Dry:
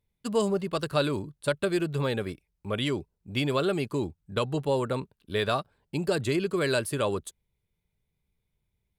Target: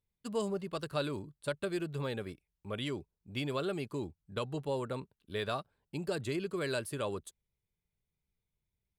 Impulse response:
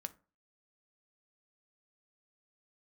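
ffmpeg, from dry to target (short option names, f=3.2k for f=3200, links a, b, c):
-af "volume=-8.5dB"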